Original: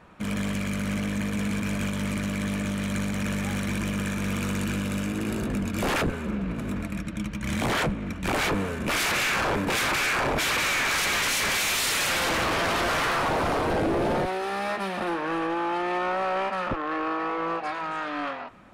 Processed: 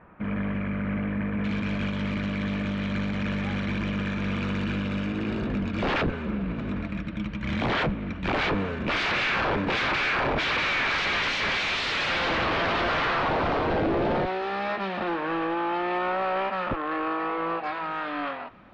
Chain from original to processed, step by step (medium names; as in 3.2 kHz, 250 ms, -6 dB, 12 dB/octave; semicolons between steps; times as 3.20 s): low-pass 2.2 kHz 24 dB/octave, from 1.44 s 4.2 kHz